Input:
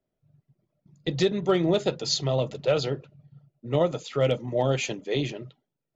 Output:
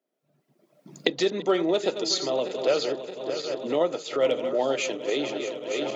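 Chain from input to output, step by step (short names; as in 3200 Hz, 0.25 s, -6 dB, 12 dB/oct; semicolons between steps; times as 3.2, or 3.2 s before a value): regenerating reverse delay 0.311 s, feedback 69%, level -11.5 dB; recorder AGC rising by 23 dB/s; HPF 250 Hz 24 dB/oct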